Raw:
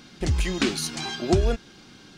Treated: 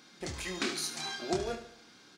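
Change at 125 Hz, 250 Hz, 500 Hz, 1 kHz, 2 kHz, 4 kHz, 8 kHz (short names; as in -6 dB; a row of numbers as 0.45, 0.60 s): -19.0, -12.0, -9.5, -6.0, -6.0, -6.5, -5.5 dB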